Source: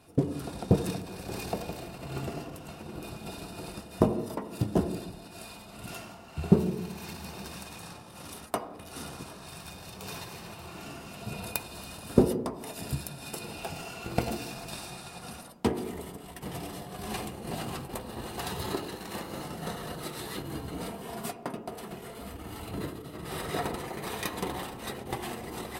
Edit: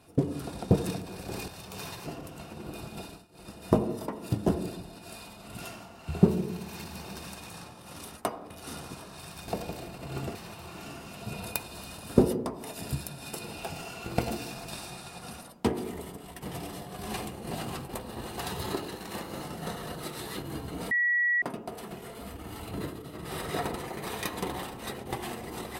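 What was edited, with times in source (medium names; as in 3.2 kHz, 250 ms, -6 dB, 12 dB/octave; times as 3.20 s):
1.48–2.35 s: swap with 9.77–10.35 s
3.28–3.89 s: dip -22.5 dB, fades 0.29 s
20.91–21.42 s: bleep 1.93 kHz -22.5 dBFS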